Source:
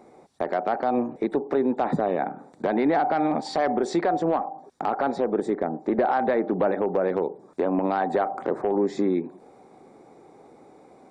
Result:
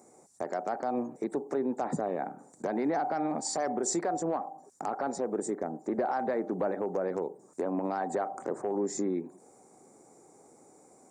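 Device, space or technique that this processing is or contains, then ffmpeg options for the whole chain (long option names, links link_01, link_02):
budget condenser microphone: -af "highpass=66,highshelf=frequency=5000:width_type=q:width=3:gain=13.5,volume=-7.5dB"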